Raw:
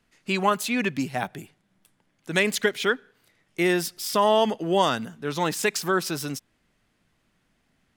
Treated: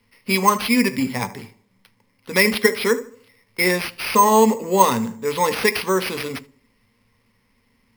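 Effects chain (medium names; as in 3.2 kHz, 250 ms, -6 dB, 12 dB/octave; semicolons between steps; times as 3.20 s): de-esser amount 45%; rippled EQ curve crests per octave 0.92, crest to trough 15 dB; tape echo 74 ms, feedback 44%, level -14 dB, low-pass 1.6 kHz; on a send at -9 dB: reverberation RT60 0.25 s, pre-delay 3 ms; on the sum: careless resampling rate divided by 6×, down none, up hold; trim +2.5 dB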